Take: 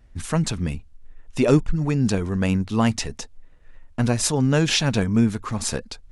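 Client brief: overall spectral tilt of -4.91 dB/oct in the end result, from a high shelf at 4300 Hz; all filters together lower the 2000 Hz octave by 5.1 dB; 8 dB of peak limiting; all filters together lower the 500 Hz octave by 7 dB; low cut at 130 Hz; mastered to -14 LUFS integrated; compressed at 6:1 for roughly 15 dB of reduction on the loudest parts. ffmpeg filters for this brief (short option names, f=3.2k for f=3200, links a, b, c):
-af "highpass=130,equalizer=f=500:t=o:g=-8.5,equalizer=f=2k:t=o:g=-5,highshelf=f=4.3k:g=-6.5,acompressor=threshold=-32dB:ratio=6,volume=25dB,alimiter=limit=-4.5dB:level=0:latency=1"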